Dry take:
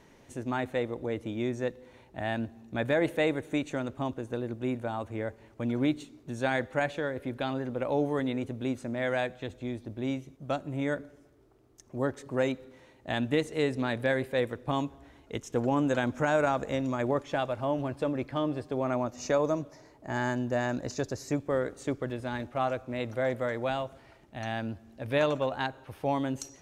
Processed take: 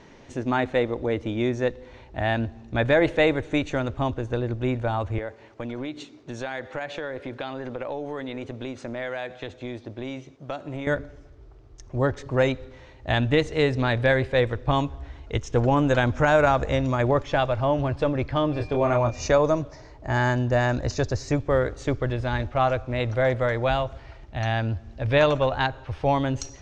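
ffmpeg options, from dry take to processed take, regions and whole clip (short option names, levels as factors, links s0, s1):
-filter_complex "[0:a]asettb=1/sr,asplit=3[s0][s1][s2];[s0]atrim=end=5.184[s3];[s1]atrim=start=5.18:end=10.87,asetpts=PTS-STARTPTS,afade=t=in:d=0.004:c=qsin,afade=t=out:st=5.686:d=0.004:c=qsin,highpass=220,acompressor=threshold=0.02:ratio=6:attack=3.2:release=140:knee=1:detection=peak[s4];[s2]atrim=start=10.866[s5];[s3][s4]acrossfade=d=0.004:c1=hsin:c2=qsin[s6];[s6][s5]acrossfade=d=0.004:c1=qsin:c2=hsin,asettb=1/sr,asplit=3[s7][s8][s9];[s7]atrim=end=18.534[s10];[s8]atrim=start=18.53:end=19.28,asetpts=PTS-STARTPTS,afade=t=in:d=0.004:c=qsin,afade=t=out:st=0.746:d=0.004:c=qsin,bandreject=f=1300:w=19,asplit=2[s11][s12];[s12]adelay=26,volume=0.562[s13];[s11][s13]amix=inputs=2:normalize=0,atrim=end_sample=33075,aeval=exprs='val(0)+0.002*sin(2*PI*2400*n/s)':c=same[s14];[s9]atrim=start=19.276[s15];[s10][s14]acrossfade=d=0.004:c1=hsin:c2=qsin[s16];[s16][s15]acrossfade=d=0.004:c1=qsin:c2=hsin,lowpass=f=6200:w=0.5412,lowpass=f=6200:w=1.3066,asubboost=boost=9.5:cutoff=67,volume=2.51"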